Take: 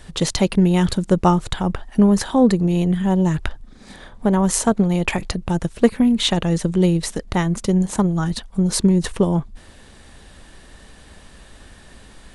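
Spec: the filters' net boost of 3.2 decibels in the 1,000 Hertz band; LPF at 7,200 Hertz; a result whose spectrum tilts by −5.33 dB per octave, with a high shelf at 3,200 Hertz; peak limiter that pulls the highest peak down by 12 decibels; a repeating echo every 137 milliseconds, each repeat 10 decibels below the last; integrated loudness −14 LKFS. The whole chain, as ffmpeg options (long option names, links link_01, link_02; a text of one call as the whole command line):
ffmpeg -i in.wav -af "lowpass=7200,equalizer=frequency=1000:width_type=o:gain=3.5,highshelf=frequency=3200:gain=5,alimiter=limit=-13dB:level=0:latency=1,aecho=1:1:137|274|411|548:0.316|0.101|0.0324|0.0104,volume=8.5dB" out.wav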